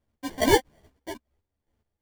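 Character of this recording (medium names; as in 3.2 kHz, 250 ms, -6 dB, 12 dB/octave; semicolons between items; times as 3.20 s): chopped level 2.4 Hz, depth 60%, duty 35%; aliases and images of a low sample rate 1.3 kHz, jitter 0%; a shimmering, thickened sound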